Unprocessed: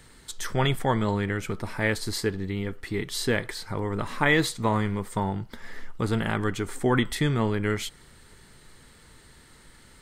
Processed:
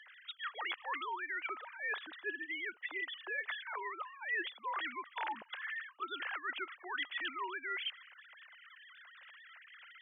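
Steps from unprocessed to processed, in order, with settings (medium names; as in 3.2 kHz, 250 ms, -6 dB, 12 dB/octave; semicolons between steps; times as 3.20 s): formants replaced by sine waves; high-pass 1.3 kHz 12 dB/octave; reverse; compression 6:1, threshold -45 dBFS, peak gain reduction 26 dB; reverse; trim +7 dB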